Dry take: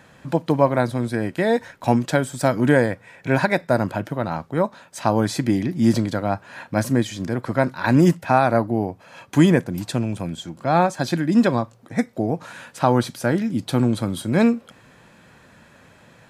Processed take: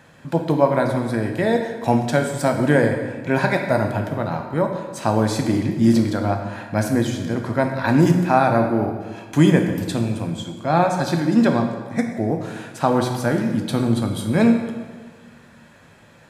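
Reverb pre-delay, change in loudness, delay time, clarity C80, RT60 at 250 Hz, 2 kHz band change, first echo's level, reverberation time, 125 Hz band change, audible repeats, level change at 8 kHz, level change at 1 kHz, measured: 6 ms, +1.0 dB, no echo audible, 7.5 dB, 1.6 s, +0.5 dB, no echo audible, 1.4 s, +1.5 dB, no echo audible, +0.5 dB, +0.5 dB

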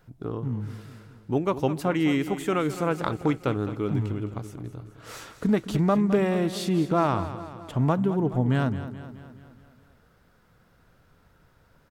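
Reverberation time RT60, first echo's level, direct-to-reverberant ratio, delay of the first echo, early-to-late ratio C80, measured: no reverb audible, −13.0 dB, no reverb audible, 212 ms, no reverb audible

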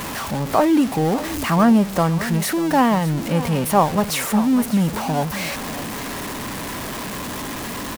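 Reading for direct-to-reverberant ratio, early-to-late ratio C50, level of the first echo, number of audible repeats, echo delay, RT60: no reverb audible, no reverb audible, −14.5 dB, 1, 599 ms, no reverb audible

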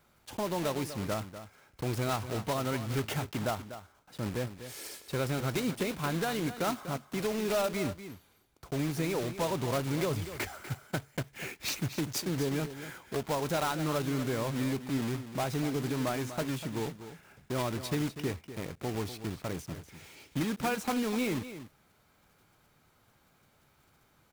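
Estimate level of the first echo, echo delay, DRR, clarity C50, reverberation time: −12.0 dB, 245 ms, no reverb audible, no reverb audible, no reverb audible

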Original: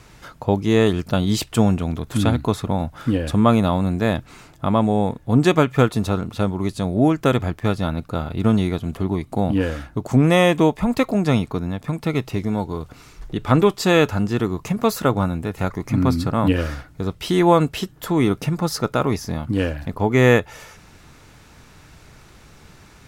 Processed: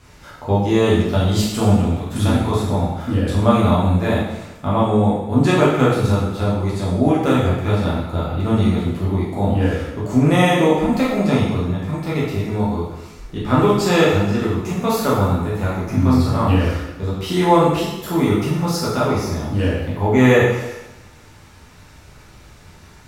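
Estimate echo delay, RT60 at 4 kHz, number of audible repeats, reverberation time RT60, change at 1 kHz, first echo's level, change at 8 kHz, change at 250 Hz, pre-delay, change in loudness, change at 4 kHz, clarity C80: no echo audible, 0.95 s, no echo audible, 0.95 s, +3.0 dB, no echo audible, +2.0 dB, +1.5 dB, 5 ms, +2.0 dB, +1.5 dB, 3.5 dB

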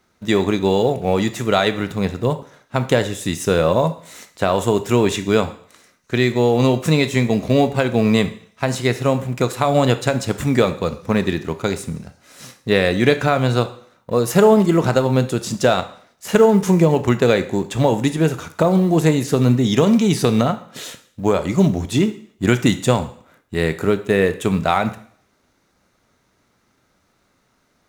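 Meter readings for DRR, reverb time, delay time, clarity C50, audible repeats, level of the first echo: 10.5 dB, 0.55 s, no echo audible, 14.0 dB, no echo audible, no echo audible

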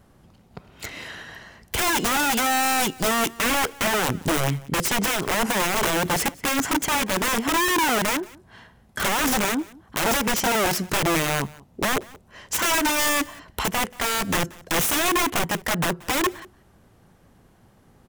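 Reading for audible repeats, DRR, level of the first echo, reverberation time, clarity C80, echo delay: 1, no reverb audible, −22.5 dB, no reverb audible, no reverb audible, 181 ms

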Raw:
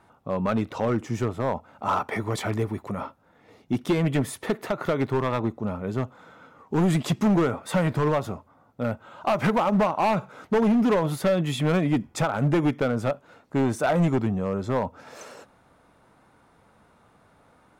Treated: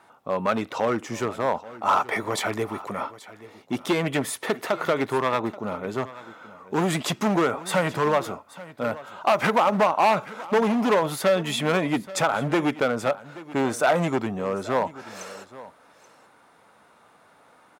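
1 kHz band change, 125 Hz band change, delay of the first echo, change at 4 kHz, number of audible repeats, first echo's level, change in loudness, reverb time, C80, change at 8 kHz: +4.0 dB, −6.5 dB, 830 ms, +5.5 dB, 1, −18.0 dB, +0.5 dB, no reverb audible, no reverb audible, +5.5 dB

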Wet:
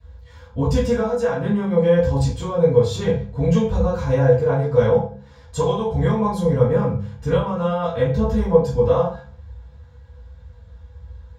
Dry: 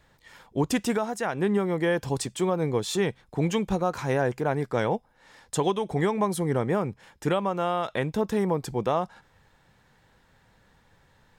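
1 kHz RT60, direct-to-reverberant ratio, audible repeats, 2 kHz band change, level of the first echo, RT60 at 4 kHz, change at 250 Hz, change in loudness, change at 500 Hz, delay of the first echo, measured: 0.40 s, −14.0 dB, no echo audible, 0.0 dB, no echo audible, 0.35 s, +5.5 dB, +7.5 dB, +9.0 dB, no echo audible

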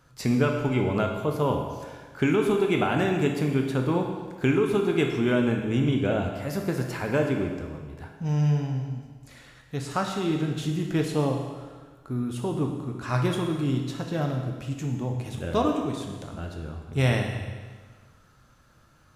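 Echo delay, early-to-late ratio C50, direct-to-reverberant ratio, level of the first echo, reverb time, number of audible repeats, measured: no echo audible, 4.5 dB, 2.0 dB, no echo audible, 1.5 s, no echo audible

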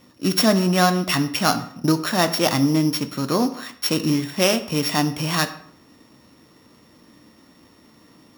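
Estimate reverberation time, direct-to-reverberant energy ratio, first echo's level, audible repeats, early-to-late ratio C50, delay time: 0.65 s, 8.0 dB, no echo audible, no echo audible, 13.5 dB, no echo audible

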